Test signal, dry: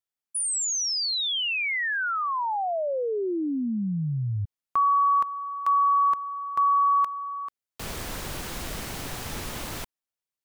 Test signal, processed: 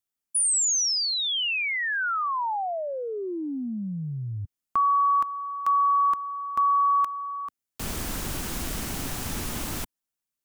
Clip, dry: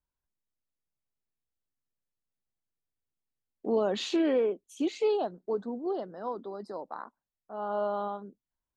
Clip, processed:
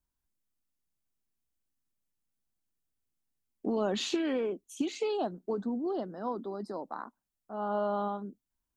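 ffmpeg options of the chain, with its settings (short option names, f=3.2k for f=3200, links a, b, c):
-filter_complex "[0:a]equalizer=f=125:t=o:w=1:g=-3,equalizer=f=250:t=o:w=1:g=3,equalizer=f=500:t=o:w=1:g=-6,equalizer=f=1k:t=o:w=1:g=-3,equalizer=f=2k:t=o:w=1:g=-4,equalizer=f=4k:t=o:w=1:g=-4,acrossover=split=940[a][b];[a]acompressor=threshold=-40dB:ratio=5:attack=53:release=33:knee=1:detection=peak[c];[c][b]amix=inputs=2:normalize=0,volume=5dB"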